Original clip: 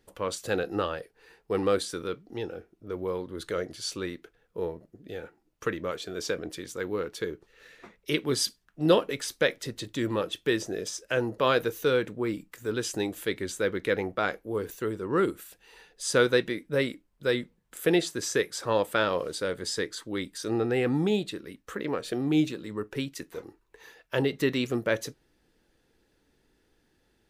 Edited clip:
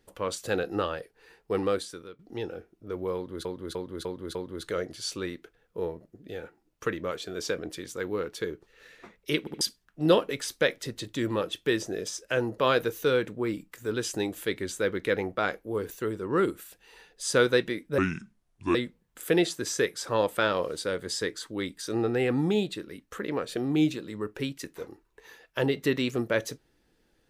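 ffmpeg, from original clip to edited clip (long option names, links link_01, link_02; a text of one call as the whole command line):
ffmpeg -i in.wav -filter_complex "[0:a]asplit=11[link_01][link_02][link_03][link_04][link_05][link_06][link_07][link_08][link_09][link_10][link_11];[link_01]atrim=end=2.19,asetpts=PTS-STARTPTS,afade=type=out:start_time=1.54:duration=0.65:silence=0.112202[link_12];[link_02]atrim=start=2.19:end=3.452,asetpts=PTS-STARTPTS,afade=type=in:duration=0.004:curve=hsin:silence=0.112202[link_13];[link_03]atrim=start=3.148:end=3.452[link_14];[link_04]atrim=start=3.148:end=3.452[link_15];[link_05]atrim=start=3.148:end=3.452[link_16];[link_06]atrim=start=3.148:end=8.272[link_17];[link_07]atrim=start=8.198:end=8.272[link_18];[link_08]atrim=start=8.198:end=8.272[link_19];[link_09]atrim=start=8.408:end=16.784[link_20];[link_10]atrim=start=16.78:end=17.31,asetpts=PTS-STARTPTS,asetrate=30429,aresample=44100[link_21];[link_11]atrim=start=17.306[link_22];[link_12][link_13]concat=n=2:v=0:a=1[link_23];[link_23][link_14]acrossfade=duration=0.004:curve1=hsin:curve2=hsin[link_24];[link_24][link_15]acrossfade=duration=0.004:curve1=hsin:curve2=hsin[link_25];[link_25][link_16]acrossfade=duration=0.004:curve1=hsin:curve2=hsin[link_26];[link_26][link_17]acrossfade=duration=0.004:curve1=hsin:curve2=hsin[link_27];[link_27][link_18]acrossfade=duration=0.004:curve1=hsin:curve2=hsin[link_28];[link_28][link_19]acrossfade=duration=0.004:curve1=hsin:curve2=hsin[link_29];[link_29][link_20]acrossfade=duration=0.004:curve1=hsin:curve2=hsin[link_30];[link_30][link_21]acrossfade=duration=0.004:curve1=hsin:curve2=hsin[link_31];[link_31][link_22]acrossfade=duration=0.004:curve1=hsin:curve2=hsin" out.wav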